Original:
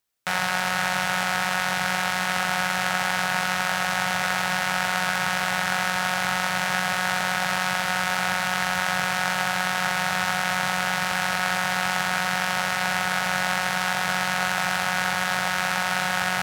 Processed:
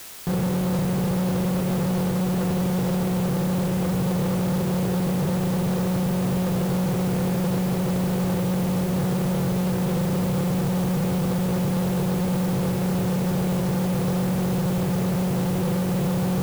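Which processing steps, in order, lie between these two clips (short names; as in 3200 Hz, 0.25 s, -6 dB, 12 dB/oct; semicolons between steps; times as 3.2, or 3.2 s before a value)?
rippled Chebyshev low-pass 530 Hz, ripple 9 dB; in parallel at -5 dB: fuzz box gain 50 dB, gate -59 dBFS; on the sum: requantised 6-bit, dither triangular; gain -4 dB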